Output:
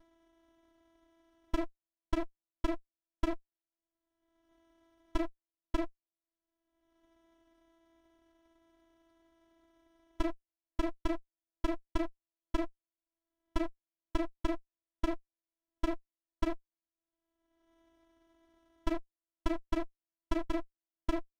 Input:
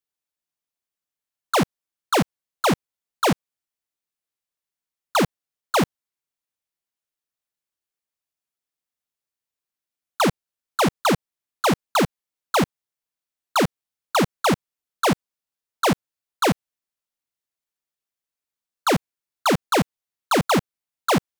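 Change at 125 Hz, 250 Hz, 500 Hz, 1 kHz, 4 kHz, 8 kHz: -19.0, -12.5, -16.5, -20.5, -23.0, -28.0 dB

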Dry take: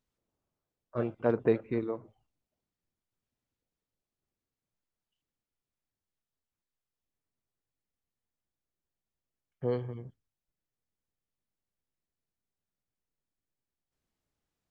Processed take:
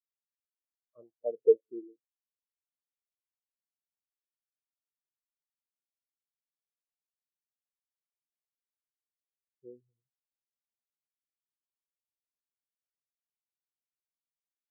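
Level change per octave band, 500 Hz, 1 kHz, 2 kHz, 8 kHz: +1.5 dB, under -15 dB, under -35 dB, n/a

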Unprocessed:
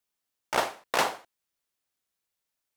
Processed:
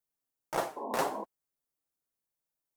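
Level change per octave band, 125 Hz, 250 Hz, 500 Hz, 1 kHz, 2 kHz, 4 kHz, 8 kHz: -1.0, +0.5, -2.0, -4.5, -10.0, -12.0, -7.0 dB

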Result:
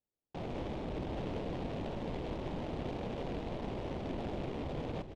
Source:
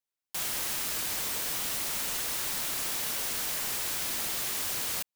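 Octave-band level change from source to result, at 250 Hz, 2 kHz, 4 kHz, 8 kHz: +9.0 dB, -14.0 dB, -18.5 dB, under -35 dB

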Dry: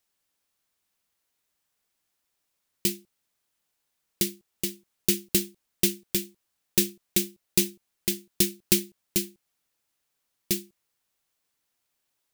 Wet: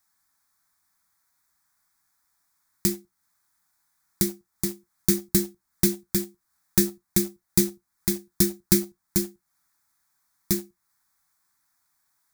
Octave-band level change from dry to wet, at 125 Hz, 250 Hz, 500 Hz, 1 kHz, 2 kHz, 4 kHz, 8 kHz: +7.0 dB, +5.5 dB, +3.5 dB, n/a, -2.0 dB, -3.5 dB, +0.5 dB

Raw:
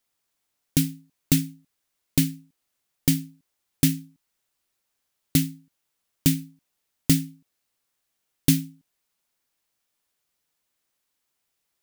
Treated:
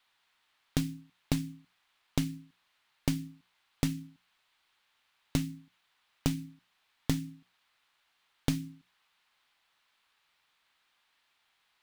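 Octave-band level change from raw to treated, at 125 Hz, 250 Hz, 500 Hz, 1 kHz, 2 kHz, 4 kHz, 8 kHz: -8.5 dB, -9.0 dB, -2.0 dB, n/a, -7.0 dB, -9.5 dB, -14.5 dB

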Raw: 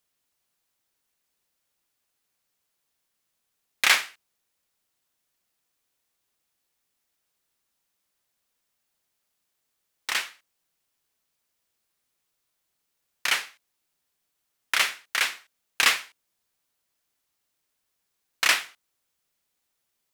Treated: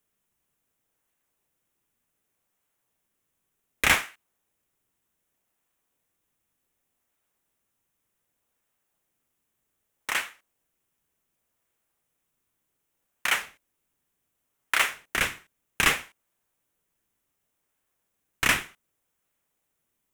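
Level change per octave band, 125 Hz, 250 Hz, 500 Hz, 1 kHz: n/a, +10.5 dB, +4.0 dB, +0.5 dB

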